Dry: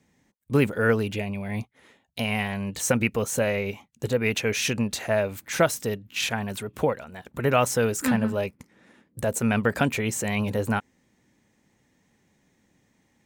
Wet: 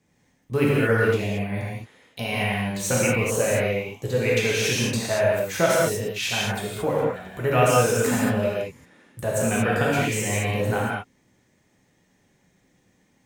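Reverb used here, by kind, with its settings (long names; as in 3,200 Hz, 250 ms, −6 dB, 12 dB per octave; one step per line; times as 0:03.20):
reverb whose tail is shaped and stops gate 250 ms flat, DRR −6 dB
level −4 dB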